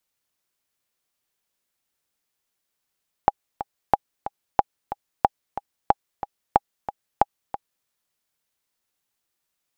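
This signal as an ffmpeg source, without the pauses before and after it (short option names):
-f lavfi -i "aevalsrc='pow(10,(-1.5-13*gte(mod(t,2*60/183),60/183))/20)*sin(2*PI*813*mod(t,60/183))*exp(-6.91*mod(t,60/183)/0.03)':d=4.59:s=44100"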